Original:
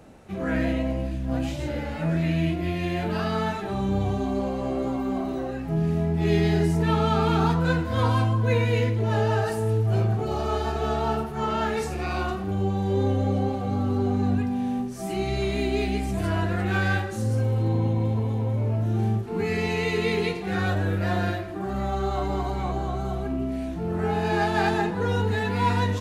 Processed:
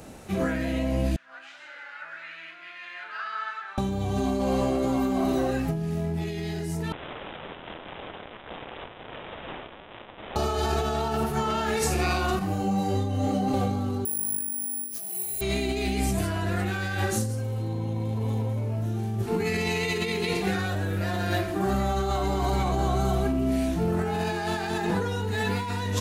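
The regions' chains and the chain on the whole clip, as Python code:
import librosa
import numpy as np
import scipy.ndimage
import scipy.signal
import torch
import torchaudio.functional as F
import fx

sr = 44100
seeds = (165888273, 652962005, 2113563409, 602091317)

y = fx.chain(x, sr, fx.ladder_bandpass(hz=1600.0, resonance_pct=60),
    fx.echo_single(ms=187, db=-9.5), at=(1.16, 3.78))
y = fx.chain(y, sr, fx.clip_1bit(),
    fx.bandpass_q(hz=6800.0, q=9.4),
    fx.resample_bad(factor=6, down='none', up='filtered'), at=(6.92, 10.36))
y = fx.chain(y, sr, fx.notch(hz=3500.0, q=10.0),
    fx.comb(ms=6.6, depth=0.67),
    fx.detune_double(cents=25), at=(12.39, 13.54))
y = fx.chain(y, sr, fx.peak_eq(hz=110.0, db=-7.5, octaves=1.1),
    fx.over_compress(threshold_db=-35.0, ratio=-1.0),
    fx.resample_bad(factor=4, down='none', up='zero_stuff'), at=(14.05, 15.41))
y = fx.high_shelf(y, sr, hz=4400.0, db=11.0)
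y = fx.over_compress(y, sr, threshold_db=-28.0, ratio=-1.0)
y = y * librosa.db_to_amplitude(1.0)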